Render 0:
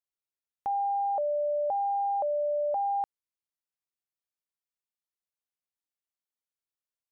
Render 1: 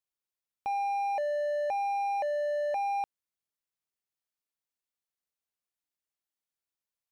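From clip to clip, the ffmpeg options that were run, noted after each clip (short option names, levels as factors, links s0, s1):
-af "asoftclip=type=hard:threshold=0.0376"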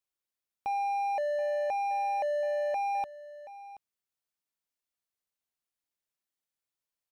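-af "aecho=1:1:728:0.158"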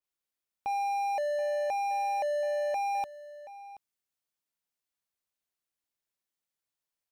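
-af "adynamicequalizer=threshold=0.002:dfrequency=3900:dqfactor=0.7:tfrequency=3900:tqfactor=0.7:attack=5:release=100:ratio=0.375:range=4:mode=boostabove:tftype=highshelf"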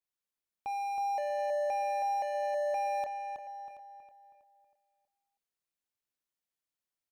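-filter_complex "[0:a]asplit=2[s0][s1];[s1]adelay=321,lowpass=f=3400:p=1,volume=0.562,asplit=2[s2][s3];[s3]adelay=321,lowpass=f=3400:p=1,volume=0.42,asplit=2[s4][s5];[s5]adelay=321,lowpass=f=3400:p=1,volume=0.42,asplit=2[s6][s7];[s7]adelay=321,lowpass=f=3400:p=1,volume=0.42,asplit=2[s8][s9];[s9]adelay=321,lowpass=f=3400:p=1,volume=0.42[s10];[s0][s2][s4][s6][s8][s10]amix=inputs=6:normalize=0,volume=0.596"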